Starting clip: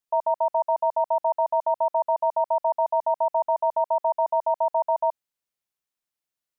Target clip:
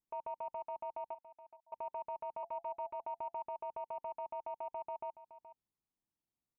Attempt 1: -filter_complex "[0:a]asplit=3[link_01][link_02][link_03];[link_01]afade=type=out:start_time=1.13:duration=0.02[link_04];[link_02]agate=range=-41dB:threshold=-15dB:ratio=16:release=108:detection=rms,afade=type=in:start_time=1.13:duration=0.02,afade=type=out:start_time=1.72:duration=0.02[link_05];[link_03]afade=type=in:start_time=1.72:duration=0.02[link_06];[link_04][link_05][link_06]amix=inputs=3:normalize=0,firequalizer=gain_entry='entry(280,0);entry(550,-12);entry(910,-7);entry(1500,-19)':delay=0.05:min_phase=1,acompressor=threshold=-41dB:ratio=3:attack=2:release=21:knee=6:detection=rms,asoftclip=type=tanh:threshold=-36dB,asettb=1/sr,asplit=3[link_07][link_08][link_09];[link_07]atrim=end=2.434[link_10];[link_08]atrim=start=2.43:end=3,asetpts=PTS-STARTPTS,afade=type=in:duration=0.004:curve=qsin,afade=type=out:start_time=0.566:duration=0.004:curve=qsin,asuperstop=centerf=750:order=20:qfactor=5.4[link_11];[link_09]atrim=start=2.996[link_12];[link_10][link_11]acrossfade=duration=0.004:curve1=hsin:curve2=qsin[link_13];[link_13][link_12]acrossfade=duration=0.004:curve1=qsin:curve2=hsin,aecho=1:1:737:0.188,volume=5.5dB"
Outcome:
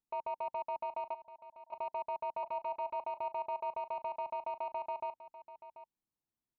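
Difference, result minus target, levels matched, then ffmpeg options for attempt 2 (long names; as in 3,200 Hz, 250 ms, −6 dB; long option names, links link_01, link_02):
echo 314 ms late; downward compressor: peak gain reduction −5.5 dB
-filter_complex "[0:a]asplit=3[link_01][link_02][link_03];[link_01]afade=type=out:start_time=1.13:duration=0.02[link_04];[link_02]agate=range=-41dB:threshold=-15dB:ratio=16:release=108:detection=rms,afade=type=in:start_time=1.13:duration=0.02,afade=type=out:start_time=1.72:duration=0.02[link_05];[link_03]afade=type=in:start_time=1.72:duration=0.02[link_06];[link_04][link_05][link_06]amix=inputs=3:normalize=0,firequalizer=gain_entry='entry(280,0);entry(550,-12);entry(910,-7);entry(1500,-19)':delay=0.05:min_phase=1,acompressor=threshold=-49dB:ratio=3:attack=2:release=21:knee=6:detection=rms,asoftclip=type=tanh:threshold=-36dB,asettb=1/sr,asplit=3[link_07][link_08][link_09];[link_07]atrim=end=2.434[link_10];[link_08]atrim=start=2.43:end=3,asetpts=PTS-STARTPTS,afade=type=in:duration=0.004:curve=qsin,afade=type=out:start_time=0.566:duration=0.004:curve=qsin,asuperstop=centerf=750:order=20:qfactor=5.4[link_11];[link_09]atrim=start=2.996[link_12];[link_10][link_11]acrossfade=duration=0.004:curve1=hsin:curve2=qsin[link_13];[link_13][link_12]acrossfade=duration=0.004:curve1=qsin:curve2=hsin,aecho=1:1:423:0.188,volume=5.5dB"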